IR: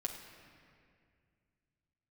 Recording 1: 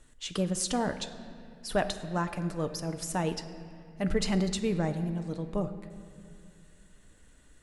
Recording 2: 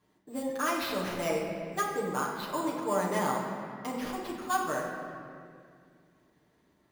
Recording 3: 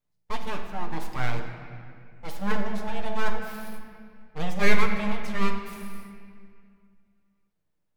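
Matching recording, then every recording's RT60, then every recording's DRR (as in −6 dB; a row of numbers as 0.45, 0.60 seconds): 3; 2.3, 2.2, 2.2 seconds; 7.5, −6.0, 1.0 decibels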